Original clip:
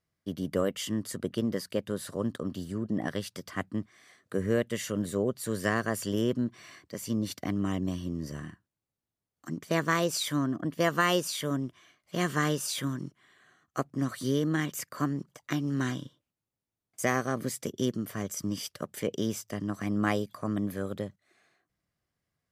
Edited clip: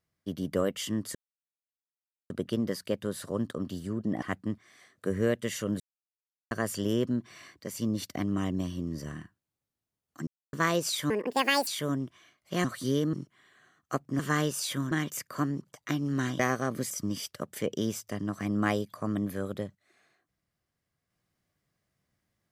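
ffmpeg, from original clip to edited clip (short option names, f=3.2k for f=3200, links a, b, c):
-filter_complex "[0:a]asplit=15[a][b][c][d][e][f][g][h][i][j][k][l][m][n][o];[a]atrim=end=1.15,asetpts=PTS-STARTPTS,afade=t=out:st=1.146:d=0.004:c=hsin,apad=pad_dur=1.15[p];[b]atrim=start=1.15:end=3.072,asetpts=PTS-STARTPTS,afade=t=in:d=0.004:c=hsin[q];[c]atrim=start=3.498:end=5.08,asetpts=PTS-STARTPTS,afade=t=out:st=1.578:d=0.004:c=hsin[r];[d]atrim=start=5.08:end=5.79,asetpts=PTS-STARTPTS,volume=0[s];[e]atrim=start=5.79:end=9.55,asetpts=PTS-STARTPTS,afade=t=in:d=0.004:c=hsin,afade=t=out:st=3.756:d=0.004:c=hsin[t];[f]atrim=start=9.55:end=9.81,asetpts=PTS-STARTPTS,volume=0[u];[g]atrim=start=9.81:end=10.384,asetpts=PTS-STARTPTS,afade=t=in:d=0.004:c=hsin[v];[h]atrim=start=10.38:end=11.29,asetpts=PTS-STARTPTS,asetrate=70119,aresample=44100[w];[i]atrim=start=11.286:end=12.262[x];[j]atrim=start=14.038:end=14.532[y];[k]atrim=start=12.978:end=14.042[z];[l]atrim=start=12.258:end=12.982[aa];[m]atrim=start=14.528:end=16.012[ab];[n]atrim=start=17.048:end=17.562[ac];[o]atrim=start=18.308[ad];[p][q]concat=n=2:v=0:a=1[ae];[r][s][t][u][v]concat=n=5:v=0:a=1[af];[ae][af]acrossfade=d=0.004:c1=hsin:c2=hsin[ag];[ag][w]acrossfade=d=0.004:c1=hsin:c2=hsin[ah];[ah][x]acrossfade=d=0.004:c1=hsin:c2=hsin[ai];[ai][y]acrossfade=d=0.004:c1=hsin:c2=hsin[aj];[aj][z]acrossfade=d=0.004:c1=hsin:c2=hsin[ak];[ak][aa]acrossfade=d=0.004:c1=hsin:c2=hsin[al];[al][ab]acrossfade=d=0.004:c1=hsin:c2=hsin[am];[am][ac]acrossfade=d=0.004:c1=hsin:c2=hsin[an];[an][ad]acrossfade=d=0.004:c1=hsin:c2=hsin"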